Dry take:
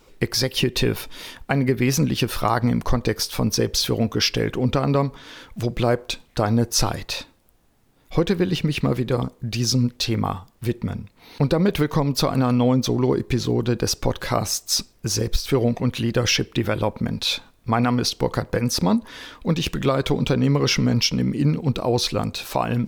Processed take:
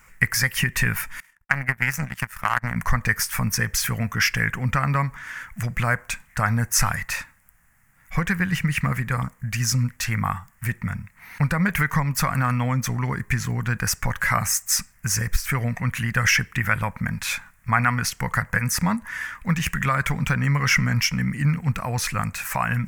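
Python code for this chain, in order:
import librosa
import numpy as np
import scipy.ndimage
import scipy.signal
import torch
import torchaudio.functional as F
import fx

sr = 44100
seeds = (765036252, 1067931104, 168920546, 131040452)

y = fx.power_curve(x, sr, exponent=2.0, at=(1.2, 2.76))
y = fx.curve_eq(y, sr, hz=(180.0, 360.0, 1900.0, 3800.0, 7200.0), db=(0, -20, 14, -14, 6))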